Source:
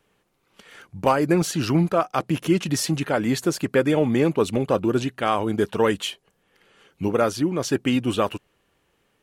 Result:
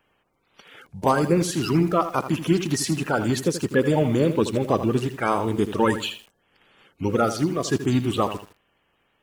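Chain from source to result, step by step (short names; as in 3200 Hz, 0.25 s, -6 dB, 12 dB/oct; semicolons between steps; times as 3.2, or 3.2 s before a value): bin magnitudes rounded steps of 30 dB; lo-fi delay 80 ms, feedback 35%, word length 7-bit, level -10.5 dB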